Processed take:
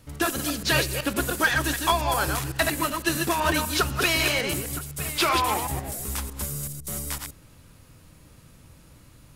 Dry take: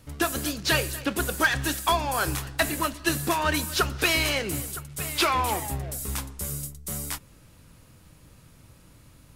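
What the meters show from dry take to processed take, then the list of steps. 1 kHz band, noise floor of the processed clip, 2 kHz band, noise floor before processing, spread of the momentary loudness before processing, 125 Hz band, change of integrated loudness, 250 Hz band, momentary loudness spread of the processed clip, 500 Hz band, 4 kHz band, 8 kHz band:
+1.5 dB, -53 dBFS, +1.5 dB, -54 dBFS, 9 LU, +1.0 dB, +1.5 dB, +1.5 dB, 9 LU, +1.5 dB, +1.5 dB, +1.5 dB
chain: reverse delay 0.126 s, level -4 dB

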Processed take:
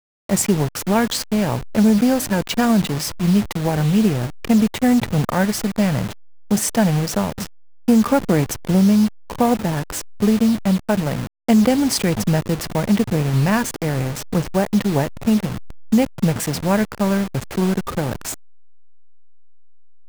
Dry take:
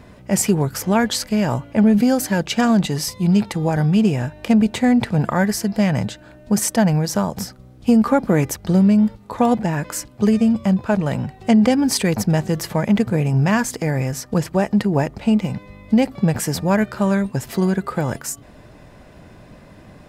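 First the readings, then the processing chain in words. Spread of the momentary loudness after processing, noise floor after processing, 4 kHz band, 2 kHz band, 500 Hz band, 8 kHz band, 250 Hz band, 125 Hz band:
9 LU, -39 dBFS, +1.0 dB, -1.0 dB, -0.5 dB, 0.0 dB, -0.5 dB, -0.5 dB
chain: level-crossing sampler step -23.5 dBFS

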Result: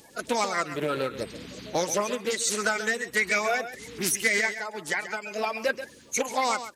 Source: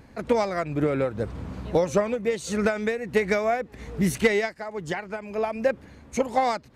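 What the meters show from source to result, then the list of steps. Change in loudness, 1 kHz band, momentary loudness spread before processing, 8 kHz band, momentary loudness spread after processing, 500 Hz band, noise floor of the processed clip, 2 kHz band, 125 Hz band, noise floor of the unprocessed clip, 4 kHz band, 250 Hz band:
-1.5 dB, -1.0 dB, 10 LU, +10.0 dB, 9 LU, -5.5 dB, -52 dBFS, +4.5 dB, -11.0 dB, -51 dBFS, +6.5 dB, -8.0 dB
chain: bin magnitudes rounded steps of 30 dB; tilt +4 dB/oct; on a send: echo 0.134 s -13 dB; on the sum: reverse; compressor 5:1, threshold -22 dBFS, peak gain reduction 8 dB; reverse; Doppler distortion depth 0.14 ms; gain +1.5 dB

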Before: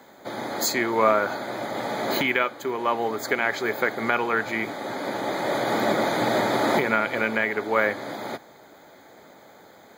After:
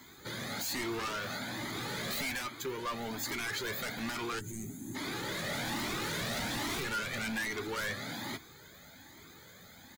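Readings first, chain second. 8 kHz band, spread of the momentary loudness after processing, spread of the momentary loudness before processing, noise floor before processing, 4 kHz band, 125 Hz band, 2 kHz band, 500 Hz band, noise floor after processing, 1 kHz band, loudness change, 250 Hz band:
-4.0 dB, 18 LU, 9 LU, -50 dBFS, -4.0 dB, -4.0 dB, -11.0 dB, -17.0 dB, -55 dBFS, -15.0 dB, -11.5 dB, -10.5 dB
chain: passive tone stack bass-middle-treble 6-0-2; in parallel at -8.5 dB: sine folder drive 18 dB, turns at -27 dBFS; on the sum: spectral gain 4.39–4.95, 410–6200 Hz -22 dB; doubler 12 ms -14 dB; soft clip -33 dBFS, distortion -20 dB; cascading flanger rising 1.2 Hz; gain +7 dB

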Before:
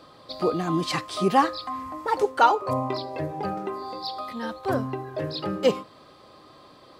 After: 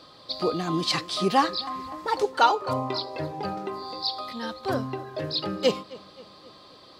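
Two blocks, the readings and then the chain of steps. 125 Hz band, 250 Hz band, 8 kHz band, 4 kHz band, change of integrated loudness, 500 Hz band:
-2.0 dB, -2.0 dB, n/a, +5.5 dB, -1.0 dB, -2.0 dB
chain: bell 4300 Hz +9 dB 1.1 oct; on a send: darkening echo 0.265 s, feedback 55%, low-pass 3900 Hz, level -20 dB; on the sum: gain -2 dB

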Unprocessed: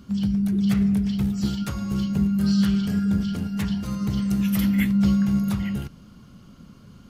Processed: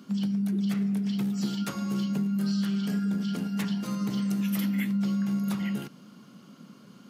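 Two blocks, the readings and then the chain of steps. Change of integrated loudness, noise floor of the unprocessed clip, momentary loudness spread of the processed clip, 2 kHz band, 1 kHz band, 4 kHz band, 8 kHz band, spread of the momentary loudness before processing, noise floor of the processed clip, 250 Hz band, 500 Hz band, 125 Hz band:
-5.5 dB, -48 dBFS, 3 LU, -4.5 dB, -2.5 dB, -3.5 dB, -3.0 dB, 7 LU, -52 dBFS, -5.5 dB, -3.0 dB, -7.0 dB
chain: HPF 180 Hz 24 dB/oct; compressor, threshold -25 dBFS, peak gain reduction 7.5 dB

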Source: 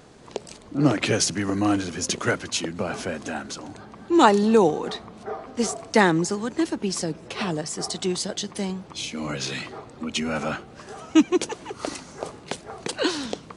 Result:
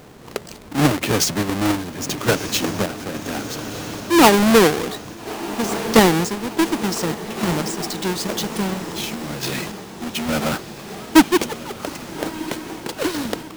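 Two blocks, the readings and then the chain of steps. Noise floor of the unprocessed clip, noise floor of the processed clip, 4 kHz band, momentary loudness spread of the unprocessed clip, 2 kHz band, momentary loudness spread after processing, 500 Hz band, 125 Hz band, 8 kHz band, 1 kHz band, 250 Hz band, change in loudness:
-46 dBFS, -37 dBFS, +5.5 dB, 17 LU, +5.0 dB, 16 LU, +4.0 dB, +5.0 dB, +4.0 dB, +4.0 dB, +4.5 dB, +4.0 dB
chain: half-waves squared off; diffused feedback echo 1.308 s, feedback 62%, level -11.5 dB; random-step tremolo; gain +1.5 dB

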